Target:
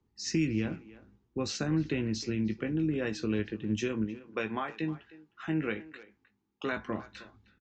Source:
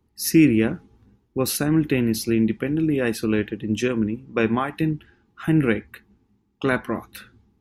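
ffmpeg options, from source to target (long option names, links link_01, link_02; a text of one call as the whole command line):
ffmpeg -i in.wav -filter_complex "[0:a]asettb=1/sr,asplit=3[link_01][link_02][link_03];[link_01]atrim=end=4.044[link_04];[link_02]atrim=start=4.04:end=6.77,asetpts=PTS-STARTPTS,afade=type=in:duration=0.004:curve=qsin,afade=type=out:start_time=2.726:duration=0.004:curve=qsin,lowshelf=frequency=230:gain=-12[link_05];[link_03]atrim=start=6.766[link_06];[link_04][link_05]acrossfade=duration=0.004:curve1=hsin:curve2=qsin[link_07];[link_07][link_06]acrossfade=duration=0.004:curve1=qsin:curve2=hsin,acrossover=split=140|3000[link_08][link_09][link_10];[link_09]acompressor=threshold=-21dB:ratio=10[link_11];[link_08][link_11][link_10]amix=inputs=3:normalize=0,asplit=2[link_12][link_13];[link_13]adelay=19,volume=-9dB[link_14];[link_12][link_14]amix=inputs=2:normalize=0,asplit=2[link_15][link_16];[link_16]adelay=310,highpass=300,lowpass=3400,asoftclip=type=hard:threshold=-19.5dB,volume=-17dB[link_17];[link_15][link_17]amix=inputs=2:normalize=0,aresample=16000,aresample=44100,volume=-7.5dB" out.wav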